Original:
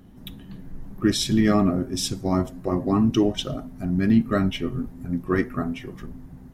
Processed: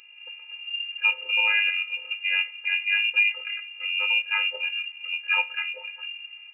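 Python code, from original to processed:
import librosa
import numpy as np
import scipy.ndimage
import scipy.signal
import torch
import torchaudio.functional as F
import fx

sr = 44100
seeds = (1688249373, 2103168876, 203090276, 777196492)

y = fx.robotise(x, sr, hz=380.0)
y = fx.freq_invert(y, sr, carrier_hz=2800)
y = fx.brickwall_highpass(y, sr, low_hz=280.0)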